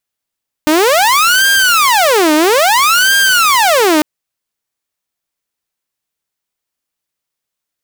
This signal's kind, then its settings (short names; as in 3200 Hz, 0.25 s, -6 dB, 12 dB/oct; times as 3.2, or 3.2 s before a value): siren wail 303–1600 Hz 0.6/s saw -5 dBFS 3.35 s